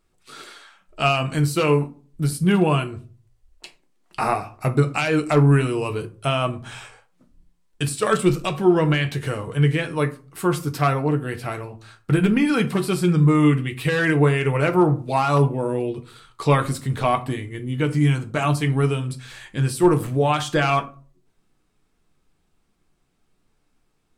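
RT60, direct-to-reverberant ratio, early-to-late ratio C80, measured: 0.40 s, 6.0 dB, 22.0 dB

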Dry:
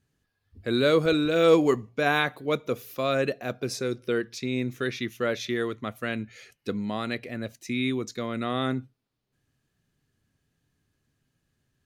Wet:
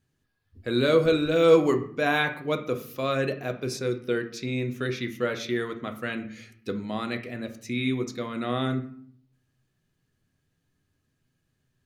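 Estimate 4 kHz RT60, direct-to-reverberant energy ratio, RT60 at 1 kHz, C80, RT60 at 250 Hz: 0.40 s, 5.5 dB, 0.55 s, 15.5 dB, 0.95 s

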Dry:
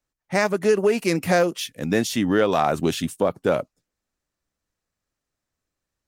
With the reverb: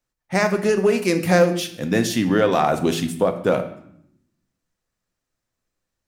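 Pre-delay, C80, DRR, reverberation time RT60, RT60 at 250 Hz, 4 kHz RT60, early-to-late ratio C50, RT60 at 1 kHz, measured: 4 ms, 14.0 dB, 7.0 dB, 0.70 s, 1.2 s, 0.60 s, 11.5 dB, 0.70 s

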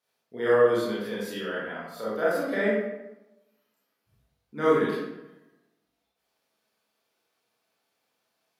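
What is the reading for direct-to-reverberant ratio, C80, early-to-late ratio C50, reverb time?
-9.0 dB, 2.5 dB, -1.5 dB, 0.95 s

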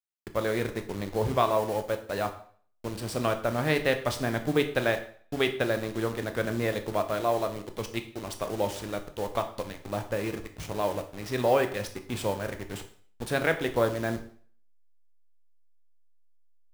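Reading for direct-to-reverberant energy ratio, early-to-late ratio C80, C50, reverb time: 7.0 dB, 15.0 dB, 11.5 dB, 0.50 s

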